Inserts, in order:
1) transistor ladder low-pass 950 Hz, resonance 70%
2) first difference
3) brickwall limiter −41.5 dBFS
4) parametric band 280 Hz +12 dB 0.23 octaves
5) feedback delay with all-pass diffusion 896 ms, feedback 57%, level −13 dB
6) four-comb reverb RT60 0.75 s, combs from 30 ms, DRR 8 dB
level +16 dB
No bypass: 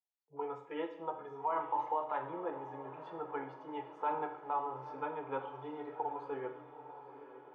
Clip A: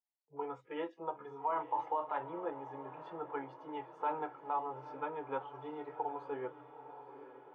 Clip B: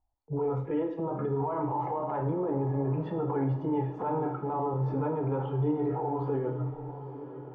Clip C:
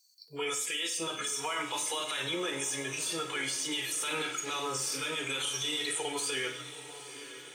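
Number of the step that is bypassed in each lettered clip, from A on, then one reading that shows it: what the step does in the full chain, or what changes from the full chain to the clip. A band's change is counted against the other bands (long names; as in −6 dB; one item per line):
6, echo-to-direct ratio −6.0 dB to −11.5 dB
2, 125 Hz band +20.5 dB
1, 2 kHz band +12.0 dB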